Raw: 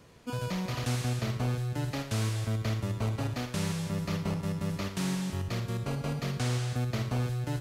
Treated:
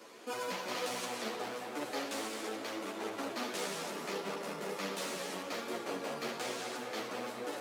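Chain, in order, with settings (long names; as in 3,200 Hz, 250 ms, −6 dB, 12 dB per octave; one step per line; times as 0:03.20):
speech leveller within 4 dB 2 s
in parallel at +0.5 dB: brickwall limiter −31 dBFS, peak gain reduction 11.5 dB
on the sum: hard clipping −27 dBFS, distortion −12 dB
high-pass filter 290 Hz 24 dB per octave
on a send: tape delay 207 ms, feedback 85%, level −5 dB, low-pass 2,800 Hz
on the sum: string-ensemble chorus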